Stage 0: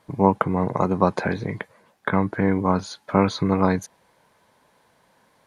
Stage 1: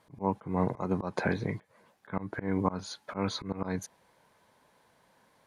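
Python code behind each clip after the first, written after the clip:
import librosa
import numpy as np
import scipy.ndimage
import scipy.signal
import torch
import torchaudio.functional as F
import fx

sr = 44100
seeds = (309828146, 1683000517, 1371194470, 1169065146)

y = fx.auto_swell(x, sr, attack_ms=202.0)
y = F.gain(torch.from_numpy(y), -4.5).numpy()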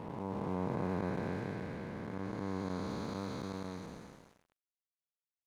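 y = fx.spec_blur(x, sr, span_ms=975.0)
y = np.sign(y) * np.maximum(np.abs(y) - 10.0 ** (-52.0 / 20.0), 0.0)
y = F.gain(torch.from_numpy(y), 1.0).numpy()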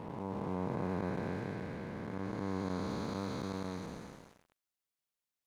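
y = fx.rider(x, sr, range_db=4, speed_s=2.0)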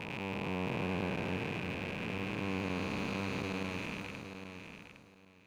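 y = fx.rattle_buzz(x, sr, strikes_db=-48.0, level_db=-30.0)
y = fx.echo_feedback(y, sr, ms=810, feedback_pct=20, wet_db=-8.5)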